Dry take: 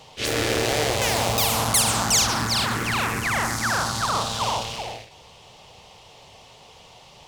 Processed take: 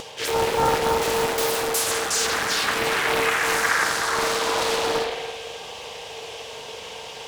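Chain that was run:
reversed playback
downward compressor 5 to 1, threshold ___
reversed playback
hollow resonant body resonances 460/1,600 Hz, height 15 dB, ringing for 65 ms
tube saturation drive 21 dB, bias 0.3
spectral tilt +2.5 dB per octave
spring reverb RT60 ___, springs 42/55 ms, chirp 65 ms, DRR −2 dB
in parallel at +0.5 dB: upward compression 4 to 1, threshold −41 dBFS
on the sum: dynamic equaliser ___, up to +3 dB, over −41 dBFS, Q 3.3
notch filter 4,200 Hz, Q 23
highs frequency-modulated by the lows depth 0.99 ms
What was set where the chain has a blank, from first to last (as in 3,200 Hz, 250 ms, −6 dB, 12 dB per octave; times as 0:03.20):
−32 dBFS, 1.8 s, 350 Hz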